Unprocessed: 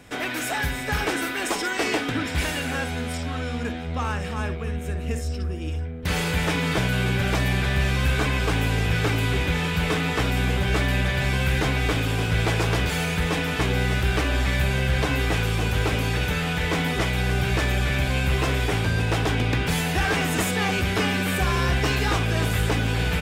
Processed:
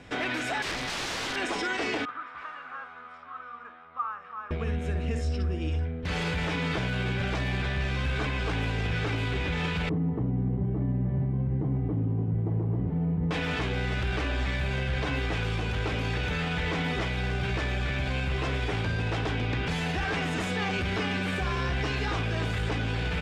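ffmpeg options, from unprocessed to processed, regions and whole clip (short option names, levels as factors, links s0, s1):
-filter_complex "[0:a]asettb=1/sr,asplit=3[s0][s1][s2];[s0]atrim=end=0.624[s3];[s1]atrim=start=0.62:end=1.36,asetpts=PTS-STARTPTS,afade=t=in:d=0.004:c=qsin,afade=t=out:st=0.736:d=0.004:c=qsin,lowpass=6000,aeval=exprs='(mod(18.8*val(0)+1,2)-1)/18.8':c=same[s4];[s2]atrim=start=1.356[s5];[s3][s4]acrossfade=d=0.004:c1=hsin:c2=qsin[s6];[s6][s5]acrossfade=d=0.004:c1=qsin:c2=hsin,asettb=1/sr,asplit=3[s7][s8][s9];[s7]atrim=end=2.054[s10];[s8]atrim=start=2.05:end=4.51,asetpts=PTS-STARTPTS,afade=t=in:d=0.004:c=qsin,afade=t=out:st=2.456:d=0.004:c=qsin,bandpass=f=1200:t=q:w=12,acontrast=39[s11];[s9]atrim=start=4.506[s12];[s10][s11]acrossfade=d=0.004:c1=hsin:c2=qsin[s13];[s13][s12]acrossfade=d=0.004:c1=qsin:c2=hsin,asettb=1/sr,asplit=3[s14][s15][s16];[s14]atrim=end=9.894[s17];[s15]atrim=start=9.89:end=13.31,asetpts=PTS-STARTPTS,afade=t=in:d=0.004:c=qsin,afade=t=out:st=3.416:d=0.004:c=qsin,asuperpass=centerf=210:order=4:qfactor=0.64,aecho=1:1:1:0.43,atrim=end_sample=150822[s18];[s16]atrim=start=13.306[s19];[s17][s18]acrossfade=d=0.004:c1=hsin:c2=qsin[s20];[s20][s19]acrossfade=d=0.004:c1=qsin:c2=hsin,alimiter=limit=0.0891:level=0:latency=1:release=43,lowpass=5000"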